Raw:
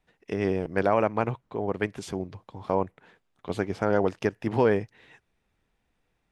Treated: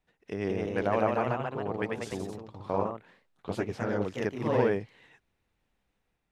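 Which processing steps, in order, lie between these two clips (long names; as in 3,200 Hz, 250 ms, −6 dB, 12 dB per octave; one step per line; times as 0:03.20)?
0:03.68–0:04.26: dynamic equaliser 730 Hz, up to −8 dB, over −37 dBFS, Q 0.89
delay with pitch and tempo change per echo 196 ms, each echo +1 semitone, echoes 3
level −5.5 dB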